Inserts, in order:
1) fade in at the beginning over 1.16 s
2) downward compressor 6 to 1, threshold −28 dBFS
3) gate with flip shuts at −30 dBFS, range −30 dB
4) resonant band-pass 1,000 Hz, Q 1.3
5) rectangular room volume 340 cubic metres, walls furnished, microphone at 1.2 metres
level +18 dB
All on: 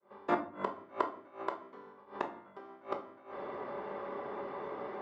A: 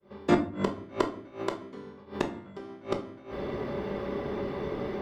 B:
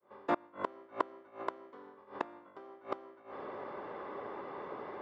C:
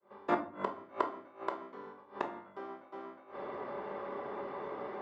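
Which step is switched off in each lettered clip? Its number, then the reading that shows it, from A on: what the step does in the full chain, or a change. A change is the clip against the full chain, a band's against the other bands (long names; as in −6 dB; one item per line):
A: 4, 1 kHz band −11.5 dB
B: 5, echo-to-direct ratio −3.5 dB to none audible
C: 2, average gain reduction 1.5 dB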